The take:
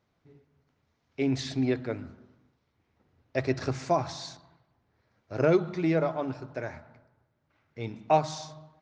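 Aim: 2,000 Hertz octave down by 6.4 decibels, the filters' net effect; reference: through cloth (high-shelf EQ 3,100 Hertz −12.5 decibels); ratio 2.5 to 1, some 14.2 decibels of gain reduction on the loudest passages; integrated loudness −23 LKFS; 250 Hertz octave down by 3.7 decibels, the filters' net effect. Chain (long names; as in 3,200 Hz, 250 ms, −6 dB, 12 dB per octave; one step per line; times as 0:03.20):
parametric band 250 Hz −5 dB
parametric band 2,000 Hz −4 dB
downward compressor 2.5 to 1, threshold −41 dBFS
high-shelf EQ 3,100 Hz −12.5 dB
level +20 dB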